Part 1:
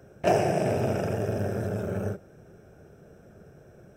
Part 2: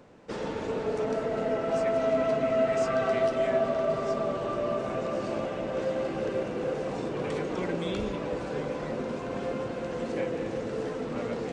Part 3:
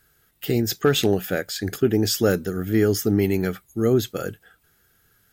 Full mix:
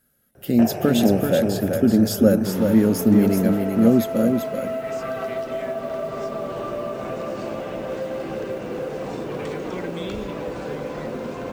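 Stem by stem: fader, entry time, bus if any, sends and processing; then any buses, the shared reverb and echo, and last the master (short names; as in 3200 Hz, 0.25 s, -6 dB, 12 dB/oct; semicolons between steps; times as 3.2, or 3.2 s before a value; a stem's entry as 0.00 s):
+0.5 dB, 0.35 s, bus A, no send, echo send -12 dB, high shelf 4400 Hz -9.5 dB
-0.5 dB, 2.15 s, bus A, no send, no echo send, modulation noise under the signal 31 dB
-10.0 dB, 0.00 s, no bus, no send, echo send -5.5 dB, bell 11000 Hz +11.5 dB 0.43 oct; small resonant body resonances 230/550 Hz, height 17 dB
bus A: 0.0 dB, compressor, threshold -29 dBFS, peak gain reduction 11.5 dB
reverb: off
echo: echo 0.383 s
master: AGC gain up to 4.5 dB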